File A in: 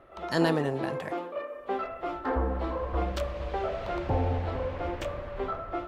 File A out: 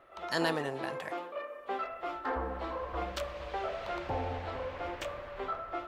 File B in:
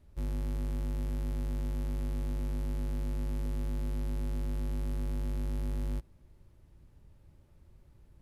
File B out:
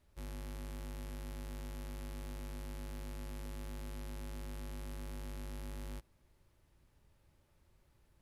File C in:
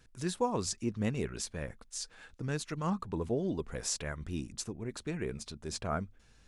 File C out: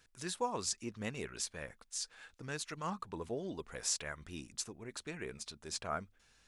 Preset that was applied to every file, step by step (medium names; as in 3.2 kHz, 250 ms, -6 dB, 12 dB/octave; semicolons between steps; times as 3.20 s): bass shelf 480 Hz -12 dB